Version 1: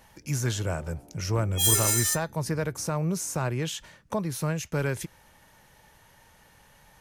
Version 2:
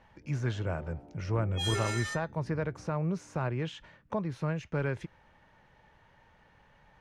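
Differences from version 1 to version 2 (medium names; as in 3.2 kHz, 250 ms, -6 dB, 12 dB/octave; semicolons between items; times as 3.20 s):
speech -3.5 dB; master: add low-pass 2.6 kHz 12 dB/octave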